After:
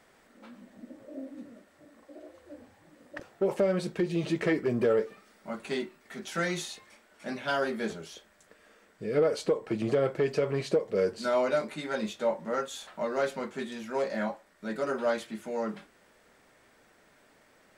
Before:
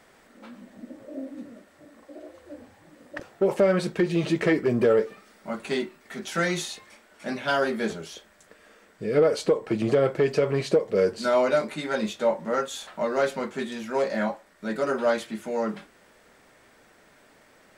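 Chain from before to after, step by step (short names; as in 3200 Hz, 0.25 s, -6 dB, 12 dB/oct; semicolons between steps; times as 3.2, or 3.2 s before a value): 3.61–4.29 dynamic EQ 1500 Hz, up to -5 dB, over -37 dBFS, Q 0.95; gain -5 dB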